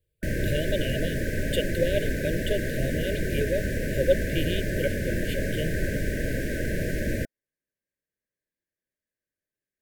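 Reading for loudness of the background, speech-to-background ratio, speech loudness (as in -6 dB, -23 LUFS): -29.5 LUFS, -1.5 dB, -31.0 LUFS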